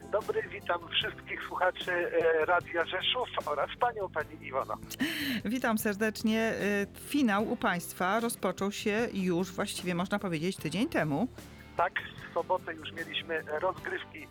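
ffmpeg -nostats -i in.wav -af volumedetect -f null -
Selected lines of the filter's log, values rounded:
mean_volume: -31.8 dB
max_volume: -13.7 dB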